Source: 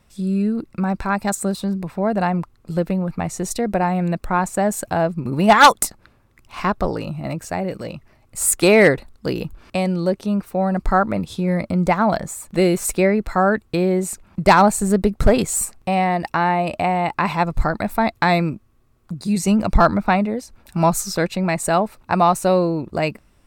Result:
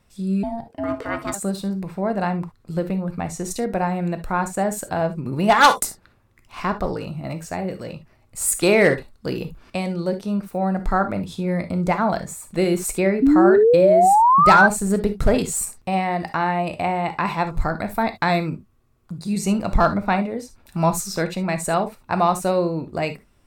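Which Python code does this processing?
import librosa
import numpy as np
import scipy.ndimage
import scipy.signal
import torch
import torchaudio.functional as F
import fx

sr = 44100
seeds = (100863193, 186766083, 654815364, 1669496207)

y = fx.rev_gated(x, sr, seeds[0], gate_ms=90, shape='flat', drr_db=8.5)
y = fx.ring_mod(y, sr, carrier_hz=460.0, at=(0.43, 1.34))
y = fx.spec_paint(y, sr, seeds[1], shape='rise', start_s=13.22, length_s=1.45, low_hz=260.0, high_hz=1600.0, level_db=-10.0)
y = F.gain(torch.from_numpy(y), -3.5).numpy()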